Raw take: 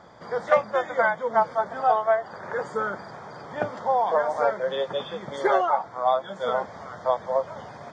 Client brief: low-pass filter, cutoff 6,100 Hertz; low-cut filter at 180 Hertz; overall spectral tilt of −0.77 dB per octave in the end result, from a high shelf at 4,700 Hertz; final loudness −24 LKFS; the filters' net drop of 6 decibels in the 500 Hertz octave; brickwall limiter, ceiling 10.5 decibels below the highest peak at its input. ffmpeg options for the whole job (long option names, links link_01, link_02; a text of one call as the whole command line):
ffmpeg -i in.wav -af "highpass=180,lowpass=6100,equalizer=frequency=500:width_type=o:gain=-8,highshelf=frequency=4700:gain=7.5,volume=8dB,alimiter=limit=-12dB:level=0:latency=1" out.wav